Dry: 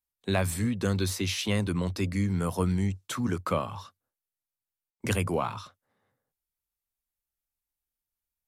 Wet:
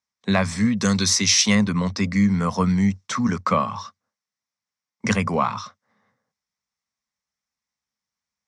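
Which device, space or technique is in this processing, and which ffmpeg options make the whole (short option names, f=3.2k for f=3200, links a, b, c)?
car door speaker: -filter_complex "[0:a]asettb=1/sr,asplit=3[a][b][c];[a]atrim=end=0.774[d];[b]atrim=start=0.77:end=1.55,asetpts=PTS-STARTPTS,afade=t=in:d=0.004:c=qsin,afade=t=out:st=0.776:d=0.004:c=qsin,aemphasis=mode=production:type=75fm[e];[c]atrim=start=1.546[f];[d][e]acrossfade=d=0.004:c1=hsin:c2=qsin[g];[g][f]acrossfade=d=0.004:c1=qsin:c2=hsin,highpass=110,equalizer=f=210:t=q:w=4:g=9,equalizer=f=340:t=q:w=4:g=-10,equalizer=f=1.1k:t=q:w=4:g=7,equalizer=f=2k:t=q:w=4:g=7,equalizer=f=2.9k:t=q:w=4:g=-4,equalizer=f=5.6k:t=q:w=4:g=9,lowpass=f=7k:w=0.5412,lowpass=f=7k:w=1.3066,volume=5.5dB"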